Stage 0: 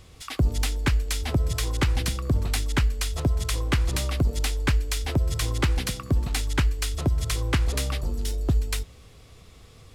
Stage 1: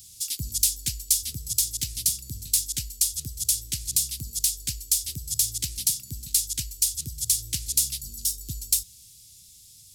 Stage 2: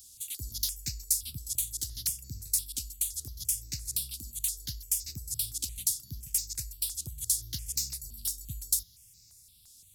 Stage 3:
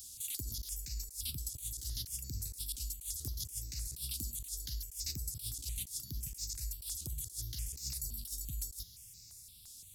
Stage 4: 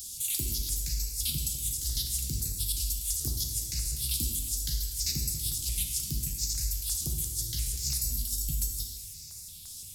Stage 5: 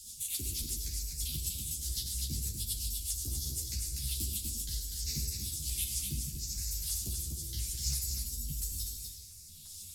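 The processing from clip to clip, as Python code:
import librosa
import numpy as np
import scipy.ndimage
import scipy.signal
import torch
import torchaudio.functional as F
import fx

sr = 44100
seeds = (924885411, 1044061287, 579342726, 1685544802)

y1 = scipy.signal.sosfilt(scipy.signal.cheby1(2, 1.0, [130.0, 5500.0], 'bandstop', fs=sr, output='sos'), x)
y1 = fx.riaa(y1, sr, side='recording')
y1 = fx.rider(y1, sr, range_db=5, speed_s=2.0)
y2 = fx.phaser_held(y1, sr, hz=5.8, low_hz=500.0, high_hz=3200.0)
y2 = F.gain(torch.from_numpy(y2), -4.0).numpy()
y3 = fx.over_compress(y2, sr, threshold_db=-40.0, ratio=-1.0)
y3 = fx.echo_wet_bandpass(y3, sr, ms=63, feedback_pct=69, hz=720.0, wet_db=-14.5)
y3 = F.gain(torch.from_numpy(y3), -1.5).numpy()
y4 = fx.rev_gated(y3, sr, seeds[0], gate_ms=460, shape='falling', drr_db=2.0)
y4 = F.gain(torch.from_numpy(y4), 8.0).numpy()
y5 = fx.rotary_switch(y4, sr, hz=8.0, then_hz=1.0, switch_at_s=4.49)
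y5 = y5 + 10.0 ** (-5.0 / 20.0) * np.pad(y5, (int(245 * sr / 1000.0), 0))[:len(y5)]
y5 = fx.ensemble(y5, sr)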